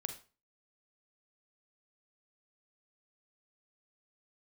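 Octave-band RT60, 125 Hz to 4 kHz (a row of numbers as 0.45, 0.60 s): 0.40, 0.40, 0.35, 0.35, 0.30, 0.30 s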